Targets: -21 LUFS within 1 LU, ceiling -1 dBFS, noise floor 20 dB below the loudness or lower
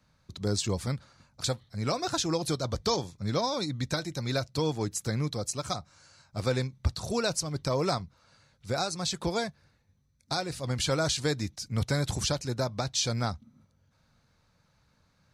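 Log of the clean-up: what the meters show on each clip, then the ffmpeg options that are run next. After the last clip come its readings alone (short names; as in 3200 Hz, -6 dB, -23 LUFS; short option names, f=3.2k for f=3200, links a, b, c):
loudness -31.0 LUFS; peak -15.5 dBFS; loudness target -21.0 LUFS
-> -af "volume=10dB"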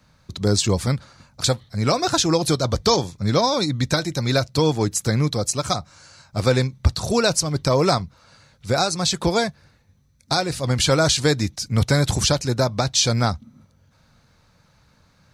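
loudness -21.0 LUFS; peak -5.5 dBFS; noise floor -59 dBFS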